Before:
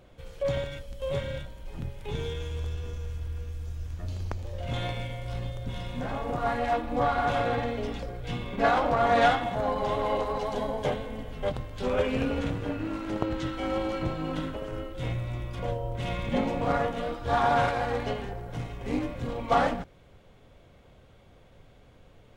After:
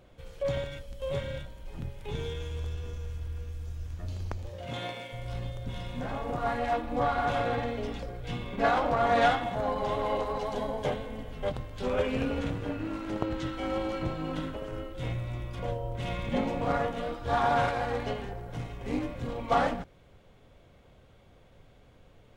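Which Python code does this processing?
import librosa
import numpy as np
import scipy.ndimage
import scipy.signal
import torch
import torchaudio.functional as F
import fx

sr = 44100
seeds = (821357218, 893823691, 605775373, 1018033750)

y = fx.highpass(x, sr, hz=fx.line((4.48, 86.0), (5.12, 340.0)), slope=12, at=(4.48, 5.12), fade=0.02)
y = y * 10.0 ** (-2.0 / 20.0)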